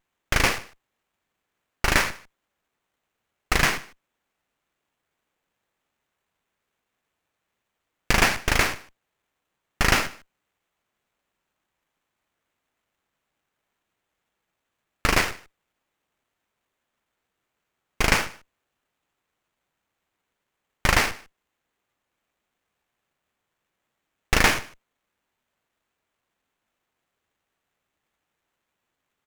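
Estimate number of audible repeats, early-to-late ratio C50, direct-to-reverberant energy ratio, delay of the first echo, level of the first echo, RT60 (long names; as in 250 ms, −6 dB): 1, no reverb audible, no reverb audible, 150 ms, −22.0 dB, no reverb audible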